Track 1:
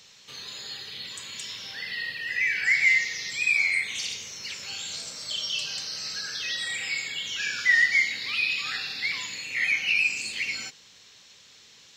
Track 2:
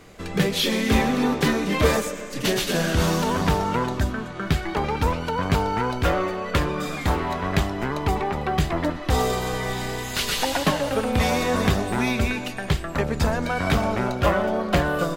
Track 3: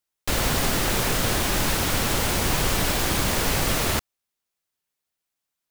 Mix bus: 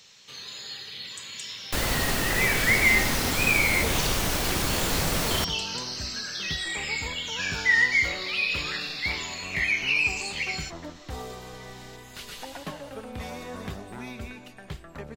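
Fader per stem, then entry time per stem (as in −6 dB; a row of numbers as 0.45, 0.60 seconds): −0.5, −15.5, −3.5 decibels; 0.00, 2.00, 1.45 seconds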